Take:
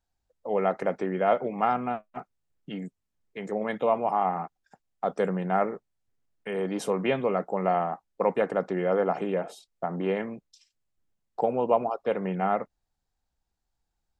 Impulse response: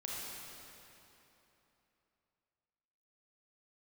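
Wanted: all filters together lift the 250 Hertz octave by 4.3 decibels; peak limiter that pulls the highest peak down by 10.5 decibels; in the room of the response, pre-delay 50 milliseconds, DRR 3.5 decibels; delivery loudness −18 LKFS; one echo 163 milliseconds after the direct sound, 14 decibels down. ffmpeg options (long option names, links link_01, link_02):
-filter_complex "[0:a]equalizer=frequency=250:width_type=o:gain=6,alimiter=limit=-18.5dB:level=0:latency=1,aecho=1:1:163:0.2,asplit=2[link_01][link_02];[1:a]atrim=start_sample=2205,adelay=50[link_03];[link_02][link_03]afir=irnorm=-1:irlink=0,volume=-4.5dB[link_04];[link_01][link_04]amix=inputs=2:normalize=0,volume=11dB"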